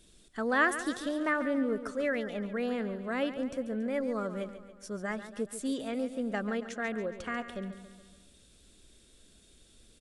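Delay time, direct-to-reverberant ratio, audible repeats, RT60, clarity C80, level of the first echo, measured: 0.14 s, none, 5, none, none, -12.0 dB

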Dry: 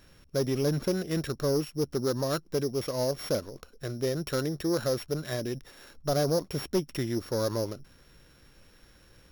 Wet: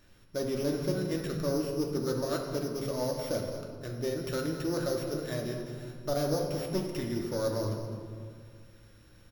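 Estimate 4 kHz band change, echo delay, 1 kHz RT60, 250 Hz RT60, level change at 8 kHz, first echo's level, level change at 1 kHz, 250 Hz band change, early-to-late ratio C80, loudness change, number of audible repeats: -4.0 dB, 0.209 s, 2.2 s, 2.9 s, -3.5 dB, -11.5 dB, -2.0 dB, -1.5 dB, 4.5 dB, -2.5 dB, 1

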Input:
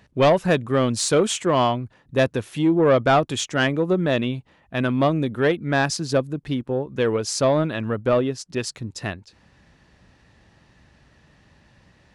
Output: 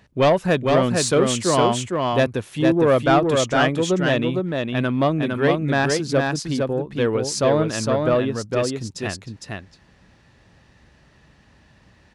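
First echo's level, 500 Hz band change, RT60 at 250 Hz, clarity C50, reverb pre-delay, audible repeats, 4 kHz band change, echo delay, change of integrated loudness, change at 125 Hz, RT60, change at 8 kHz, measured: -3.5 dB, +1.5 dB, none, none, none, 1, +1.5 dB, 0.458 s, +1.5 dB, +1.5 dB, none, +1.5 dB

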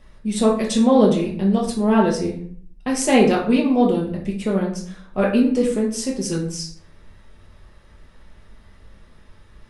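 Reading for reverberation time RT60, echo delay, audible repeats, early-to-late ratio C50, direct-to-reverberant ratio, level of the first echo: 0.55 s, none, none, 6.0 dB, -2.5 dB, none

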